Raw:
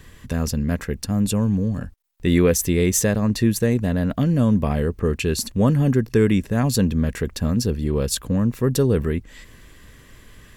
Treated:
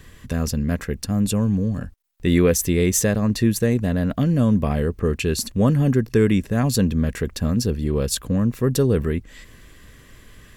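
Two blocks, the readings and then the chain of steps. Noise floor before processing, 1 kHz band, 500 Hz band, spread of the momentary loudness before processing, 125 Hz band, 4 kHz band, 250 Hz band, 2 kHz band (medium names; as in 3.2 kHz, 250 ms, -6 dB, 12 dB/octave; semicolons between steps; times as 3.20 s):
-48 dBFS, -0.5 dB, 0.0 dB, 7 LU, 0.0 dB, 0.0 dB, 0.0 dB, 0.0 dB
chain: band-stop 910 Hz, Q 13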